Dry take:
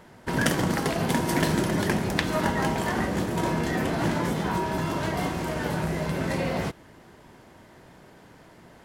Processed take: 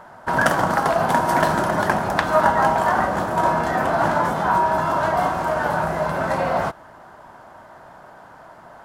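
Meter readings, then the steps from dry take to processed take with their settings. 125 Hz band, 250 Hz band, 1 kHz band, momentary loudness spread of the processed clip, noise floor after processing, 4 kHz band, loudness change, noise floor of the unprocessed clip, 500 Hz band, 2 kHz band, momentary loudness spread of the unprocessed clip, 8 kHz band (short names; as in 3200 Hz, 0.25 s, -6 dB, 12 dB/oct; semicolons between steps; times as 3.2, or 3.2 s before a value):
-1.0 dB, -1.0 dB, +12.5 dB, 5 LU, -45 dBFS, -1.0 dB, +6.5 dB, -52 dBFS, +7.5 dB, +7.0 dB, 5 LU, -1.0 dB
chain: band shelf 960 Hz +13.5 dB; gain -1 dB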